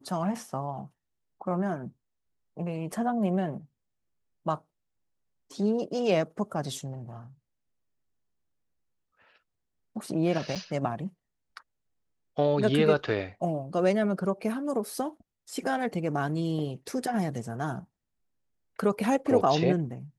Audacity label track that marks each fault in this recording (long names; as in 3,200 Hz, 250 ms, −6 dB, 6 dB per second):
2.920000	2.920000	drop-out 3.6 ms
10.550000	10.560000	drop-out 6.6 ms